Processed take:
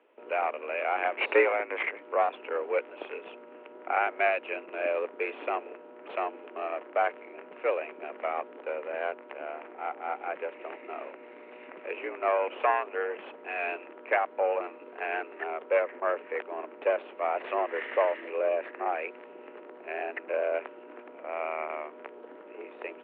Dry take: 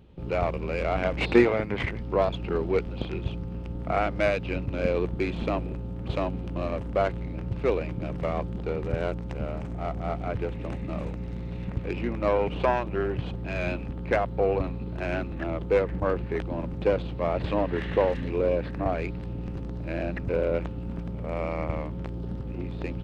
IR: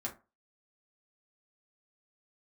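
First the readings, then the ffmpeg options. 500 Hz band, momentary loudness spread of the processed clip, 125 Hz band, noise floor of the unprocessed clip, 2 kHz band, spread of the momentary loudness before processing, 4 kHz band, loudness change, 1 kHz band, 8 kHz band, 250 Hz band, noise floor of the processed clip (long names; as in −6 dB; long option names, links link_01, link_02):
−3.0 dB, 18 LU, below −40 dB, −35 dBFS, +2.0 dB, 9 LU, −5.5 dB, −2.5 dB, +2.0 dB, can't be measured, −15.0 dB, −49 dBFS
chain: -af "tiltshelf=frequency=970:gain=-4.5,highpass=frequency=300:width_type=q:width=0.5412,highpass=frequency=300:width_type=q:width=1.307,lowpass=frequency=2500:width_type=q:width=0.5176,lowpass=frequency=2500:width_type=q:width=0.7071,lowpass=frequency=2500:width_type=q:width=1.932,afreqshift=71"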